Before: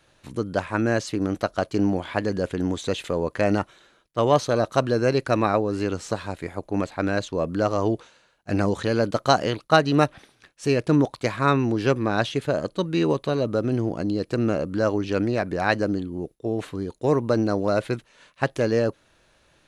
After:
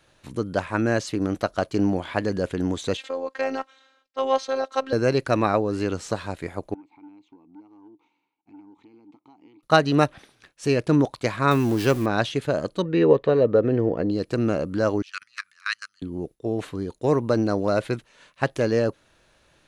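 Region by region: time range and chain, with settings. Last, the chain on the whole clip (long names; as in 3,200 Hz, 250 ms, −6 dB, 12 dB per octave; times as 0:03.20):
0:02.97–0:04.93: three-way crossover with the lows and the highs turned down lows −23 dB, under 330 Hz, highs −20 dB, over 7,000 Hz + phases set to zero 266 Hz
0:06.74–0:09.63: downward compressor 5 to 1, threshold −37 dBFS + formant filter u + saturating transformer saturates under 380 Hz
0:11.51–0:12.06: converter with a step at zero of −32.5 dBFS + high-shelf EQ 8,600 Hz +11 dB
0:12.82–0:14.11: low-pass filter 2,800 Hz + hollow resonant body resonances 470/1,800 Hz, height 11 dB, ringing for 30 ms
0:15.02–0:16.02: high-shelf EQ 2,600 Hz +8 dB + output level in coarse steps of 22 dB + elliptic high-pass filter 1,200 Hz
whole clip: no processing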